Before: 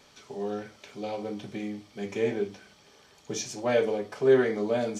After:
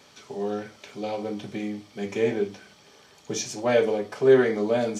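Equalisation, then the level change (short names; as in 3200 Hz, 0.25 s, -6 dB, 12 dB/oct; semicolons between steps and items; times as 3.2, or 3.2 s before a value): HPF 73 Hz; +3.5 dB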